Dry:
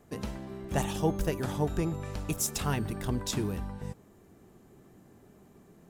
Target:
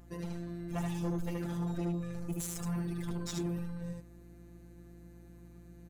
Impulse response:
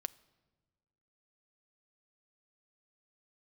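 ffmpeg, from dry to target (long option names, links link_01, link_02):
-filter_complex "[0:a]asettb=1/sr,asplit=3[link_01][link_02][link_03];[link_01]atrim=end=2.124[link_04];[link_02]atrim=start=2.12:end=2.79,asetpts=PTS-STARTPTS,afade=type=in:duration=0.004:curve=qsin,afade=type=out:start_time=0.666:duration=0.004:curve=qsin,equalizer=frequency=3200:width=1.1:gain=-13.5[link_05];[link_03]atrim=start=2.786[link_06];[link_04][link_05]acrossfade=duration=0.004:curve1=hsin:curve2=qsin[link_07];[link_07][link_06]acrossfade=duration=0.004:curve1=qsin:curve2=hsin,afftfilt=real='hypot(re,im)*cos(PI*b)':imag='0':win_size=1024:overlap=0.75,aecho=1:1:75:0.668,asoftclip=type=tanh:threshold=-29dB,aeval=exprs='val(0)+0.002*(sin(2*PI*60*n/s)+sin(2*PI*2*60*n/s)/2+sin(2*PI*3*60*n/s)/3+sin(2*PI*4*60*n/s)/4+sin(2*PI*5*60*n/s)/5)':channel_layout=same"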